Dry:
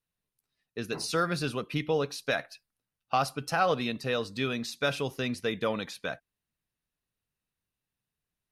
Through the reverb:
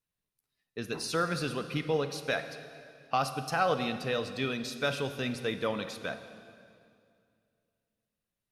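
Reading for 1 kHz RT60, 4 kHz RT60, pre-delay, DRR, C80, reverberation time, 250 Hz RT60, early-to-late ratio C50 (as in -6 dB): 2.2 s, 2.0 s, 30 ms, 9.5 dB, 11.0 dB, 2.3 s, 2.6 s, 10.0 dB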